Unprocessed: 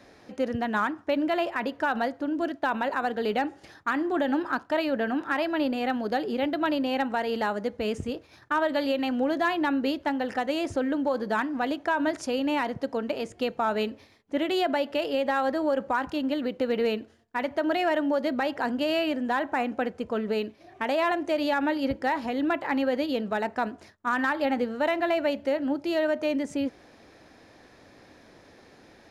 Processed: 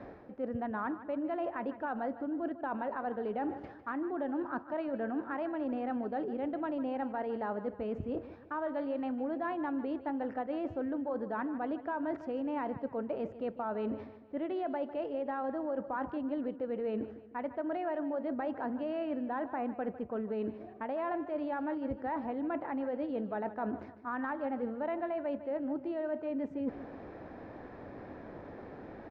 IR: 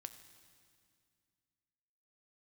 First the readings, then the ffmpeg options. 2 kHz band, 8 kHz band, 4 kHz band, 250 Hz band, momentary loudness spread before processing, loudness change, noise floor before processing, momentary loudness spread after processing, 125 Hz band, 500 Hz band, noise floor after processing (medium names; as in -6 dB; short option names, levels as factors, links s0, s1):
-14.5 dB, under -30 dB, under -20 dB, -7.5 dB, 5 LU, -9.0 dB, -55 dBFS, 6 LU, -5.0 dB, -8.5 dB, -50 dBFS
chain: -af "lowpass=1200,areverse,acompressor=threshold=0.00794:ratio=6,areverse,aecho=1:1:152|304|456|608:0.2|0.0858|0.0369|0.0159,volume=2.37"